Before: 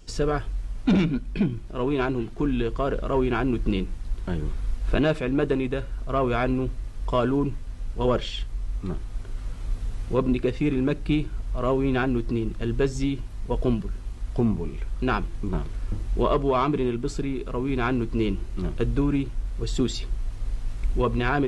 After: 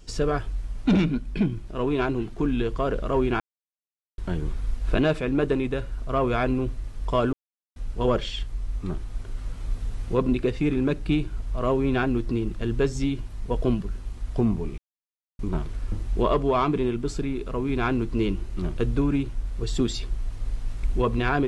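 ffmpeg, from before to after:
-filter_complex "[0:a]asplit=7[s0][s1][s2][s3][s4][s5][s6];[s0]atrim=end=3.4,asetpts=PTS-STARTPTS,afade=t=out:st=3.396:d=0.004:c=hsin[s7];[s1]atrim=start=3.4:end=4.18,asetpts=PTS-STARTPTS,volume=0[s8];[s2]atrim=start=4.18:end=7.33,asetpts=PTS-STARTPTS,afade=t=in:d=0.004:c=hsin,afade=t=out:st=3.146:d=0.004:c=hsin[s9];[s3]atrim=start=7.33:end=7.76,asetpts=PTS-STARTPTS,volume=0[s10];[s4]atrim=start=7.76:end=14.78,asetpts=PTS-STARTPTS,afade=t=in:d=0.004:c=hsin,afade=t=out:st=7.016:d=0.004:c=hsin[s11];[s5]atrim=start=14.78:end=15.39,asetpts=PTS-STARTPTS,volume=0[s12];[s6]atrim=start=15.39,asetpts=PTS-STARTPTS,afade=t=in:d=0.004:c=hsin[s13];[s7][s8][s9][s10][s11][s12][s13]concat=n=7:v=0:a=1"

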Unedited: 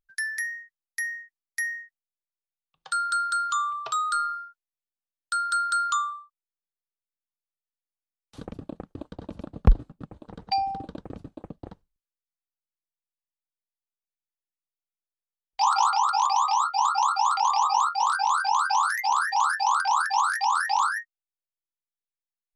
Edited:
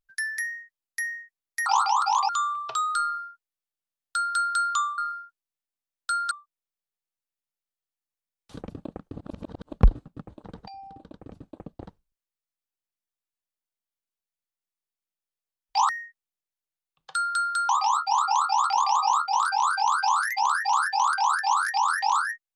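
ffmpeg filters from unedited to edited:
-filter_complex "[0:a]asplit=10[s0][s1][s2][s3][s4][s5][s6][s7][s8][s9];[s0]atrim=end=1.662[s10];[s1]atrim=start=15.728:end=16.362[s11];[s2]atrim=start=3.458:end=6.152[s12];[s3]atrim=start=4.208:end=5.542[s13];[s4]atrim=start=6.148:end=9.002[s14];[s5]atrim=start=8.998:end=9.582,asetpts=PTS-STARTPTS,areverse[s15];[s6]atrim=start=9.578:end=10.52,asetpts=PTS-STARTPTS,afade=t=out:st=0.938:d=0.004:c=hsin:silence=0.0707946[s16];[s7]atrim=start=10.52:end=15.732,asetpts=PTS-STARTPTS,afade=t=in:d=1.1:silence=0.0707946[s17];[s8]atrim=start=1.658:end=3.462[s18];[s9]atrim=start=16.358[s19];[s10][s11]acrossfade=d=0.004:c1=hsin:c2=hsin[s20];[s20][s12]acrossfade=d=0.004:c1=hsin:c2=hsin[s21];[s21][s13]acrossfade=d=0.004:c1=hsin:c2=hsin[s22];[s22][s14]acrossfade=d=0.004:c1=hsin:c2=hsin[s23];[s23][s15]acrossfade=d=0.004:c1=hsin:c2=hsin[s24];[s16][s17]concat=n=2:v=0:a=1[s25];[s24][s25]acrossfade=d=0.004:c1=hsin:c2=hsin[s26];[s26][s18]acrossfade=d=0.004:c1=hsin:c2=hsin[s27];[s27][s19]acrossfade=d=0.004:c1=hsin:c2=hsin"

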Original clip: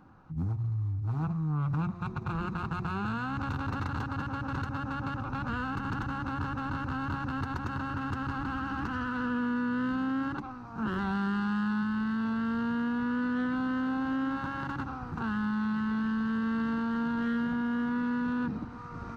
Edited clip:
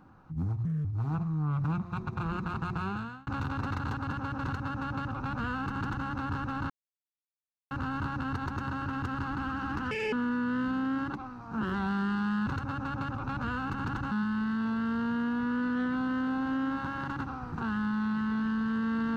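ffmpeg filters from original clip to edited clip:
-filter_complex "[0:a]asplit=9[s0][s1][s2][s3][s4][s5][s6][s7][s8];[s0]atrim=end=0.654[s9];[s1]atrim=start=0.65:end=0.94,asetpts=PTS-STARTPTS,asetrate=64386,aresample=44100[s10];[s2]atrim=start=0.936:end=3.36,asetpts=PTS-STARTPTS,afade=t=out:st=2.014:d=0.41[s11];[s3]atrim=start=3.36:end=6.79,asetpts=PTS-STARTPTS,afade=t=in:d=0.004:c=hsin,afade=t=out:st=3.426:d=0.004:c=hsin,apad=pad_dur=1.01[s12];[s4]atrim=start=6.79:end=8.994,asetpts=PTS-STARTPTS,afade=t=in:d=0.004:c=hsin[s13];[s5]atrim=start=8.99:end=9.37,asetpts=PTS-STARTPTS,asetrate=77616,aresample=44100[s14];[s6]atrim=start=9.366:end=11.712[s15];[s7]atrim=start=4.518:end=6.172[s16];[s8]atrim=start=11.708[s17];[s9][s10]acrossfade=d=0.004:c1=hsin:c2=hsin[s18];[s11][s12][s13]concat=n=3:v=0:a=1[s19];[s18][s19]acrossfade=d=0.004:c1=hsin:c2=hsin[s20];[s20][s14]acrossfade=d=0.004:c1=hsin:c2=hsin[s21];[s21][s15]acrossfade=d=0.004:c1=hsin:c2=hsin[s22];[s22][s16]acrossfade=d=0.004:c1=hsin:c2=hsin[s23];[s23][s17]acrossfade=d=0.004:c1=hsin:c2=hsin"

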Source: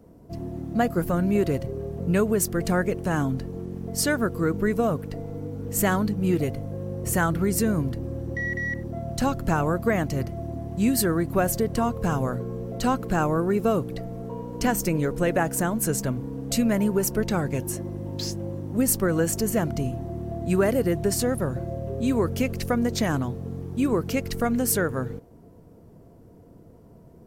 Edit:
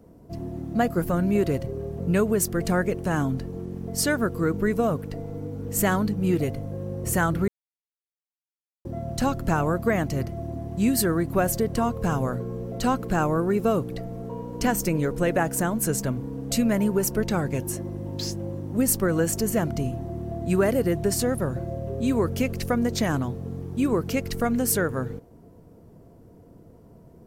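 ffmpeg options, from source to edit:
-filter_complex "[0:a]asplit=3[s0][s1][s2];[s0]atrim=end=7.48,asetpts=PTS-STARTPTS,afade=t=out:st=7.476:d=0.004:c=hsin[s3];[s1]atrim=start=7.48:end=8.85,asetpts=PTS-STARTPTS,volume=0[s4];[s2]atrim=start=8.85,asetpts=PTS-STARTPTS,afade=t=in:d=0.004:c=hsin[s5];[s3][s4][s5]concat=n=3:v=0:a=1"

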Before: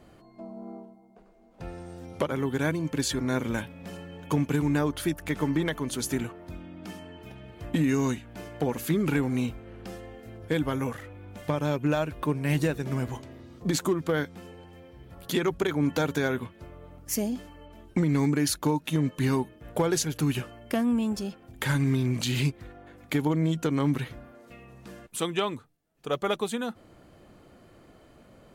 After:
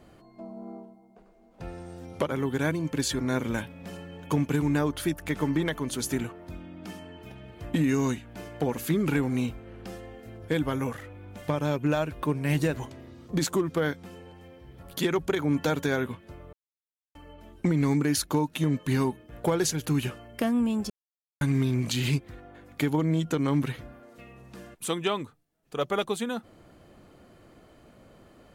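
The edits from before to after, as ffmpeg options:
-filter_complex "[0:a]asplit=6[s0][s1][s2][s3][s4][s5];[s0]atrim=end=12.742[s6];[s1]atrim=start=13.058:end=16.85,asetpts=PTS-STARTPTS,afade=t=out:st=3.788:d=0.004:c=hsin[s7];[s2]atrim=start=16.85:end=17.47,asetpts=PTS-STARTPTS,volume=0[s8];[s3]atrim=start=17.47:end=21.22,asetpts=PTS-STARTPTS,afade=t=in:d=0.004:c=hsin,afade=t=out:st=3.746:d=0.004:c=hsin[s9];[s4]atrim=start=21.22:end=21.73,asetpts=PTS-STARTPTS,volume=0[s10];[s5]atrim=start=21.73,asetpts=PTS-STARTPTS,afade=t=in:d=0.004:c=hsin[s11];[s7][s8][s9][s10][s11]concat=n=5:v=0:a=1[s12];[s6][s12]acrossfade=d=0.004:c1=hsin:c2=hsin"

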